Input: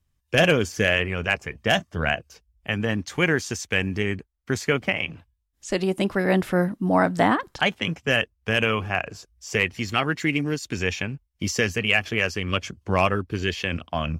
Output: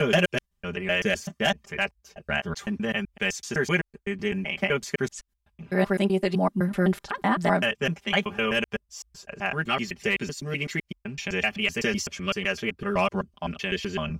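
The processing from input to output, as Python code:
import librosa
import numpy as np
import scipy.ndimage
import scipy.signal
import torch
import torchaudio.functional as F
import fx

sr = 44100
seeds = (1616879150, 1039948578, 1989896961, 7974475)

y = fx.block_reorder(x, sr, ms=127.0, group=5)
y = y + 0.93 * np.pad(y, (int(5.0 * sr / 1000.0), 0))[:len(y)]
y = F.gain(torch.from_numpy(y), -5.5).numpy()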